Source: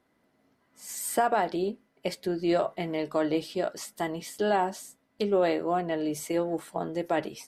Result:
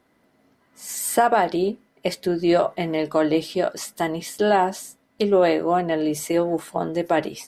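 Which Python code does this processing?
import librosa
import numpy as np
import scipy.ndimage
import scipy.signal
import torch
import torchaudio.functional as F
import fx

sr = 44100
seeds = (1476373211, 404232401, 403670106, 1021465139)

y = F.gain(torch.from_numpy(x), 7.0).numpy()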